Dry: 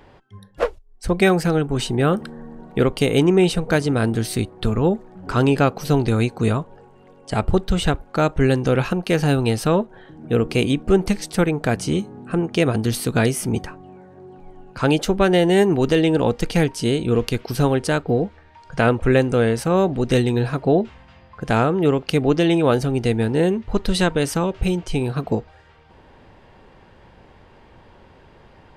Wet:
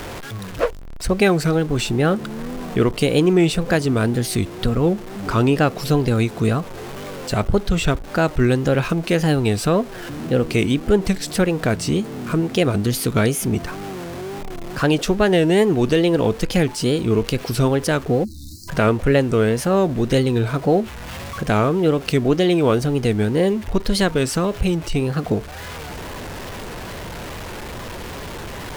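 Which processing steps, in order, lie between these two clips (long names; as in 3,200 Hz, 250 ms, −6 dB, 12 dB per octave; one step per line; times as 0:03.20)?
converter with a step at zero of −32.5 dBFS
notch filter 850 Hz, Q 12
in parallel at +1 dB: downward compressor, threshold −31 dBFS, peak gain reduction 19.5 dB
on the sum: time-frequency box erased 0:18.25–0:18.69, 360–3,800 Hz
tape wow and flutter 130 cents
level −1.5 dB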